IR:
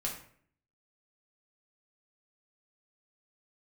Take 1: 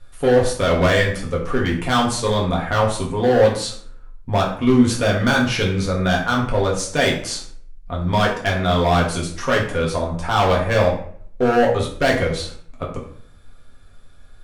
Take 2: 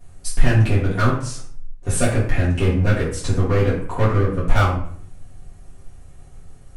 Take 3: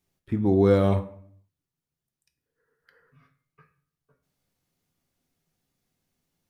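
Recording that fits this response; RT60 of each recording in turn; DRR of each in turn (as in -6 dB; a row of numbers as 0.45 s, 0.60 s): 1; 0.55 s, 0.55 s, 0.55 s; -2.5 dB, -9.5 dB, 7.0 dB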